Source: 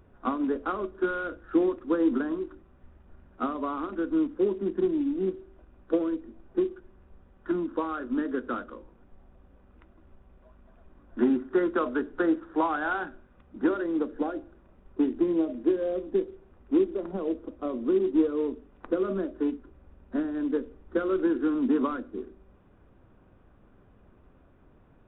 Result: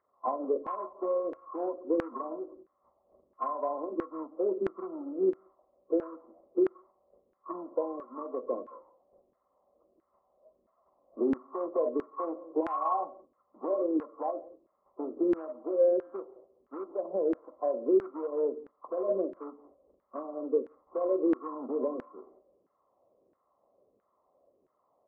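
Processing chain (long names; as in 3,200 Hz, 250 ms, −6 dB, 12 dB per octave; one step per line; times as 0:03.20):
hearing-aid frequency compression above 1,000 Hz 4 to 1
noise gate −50 dBFS, range −7 dB
parametric band 580 Hz +11.5 dB 0.8 octaves
brickwall limiter −15.5 dBFS, peak gain reduction 7 dB
harmonic generator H 3 −28 dB, 6 −45 dB, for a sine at −15.5 dBFS
single-tap delay 174 ms −21.5 dB
auto-filter band-pass saw down 1.5 Hz 340–1,600 Hz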